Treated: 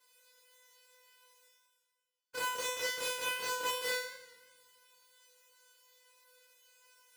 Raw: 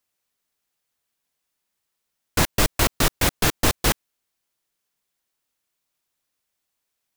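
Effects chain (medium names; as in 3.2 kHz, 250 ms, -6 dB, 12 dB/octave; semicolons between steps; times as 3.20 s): every event in the spectrogram widened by 60 ms; treble shelf 7.6 kHz -10.5 dB; reverse; upward compressor, threshold -28 dBFS; reverse; high-pass 260 Hz 12 dB/octave; peaking EQ 12 kHz +2.5 dB; feedback comb 500 Hz, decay 0.65 s, mix 100%; on a send at -16 dB: reverberation RT60 1.6 s, pre-delay 7 ms; on the sum: modulated delay 86 ms, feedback 64%, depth 84 cents, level -17.5 dB; trim +5.5 dB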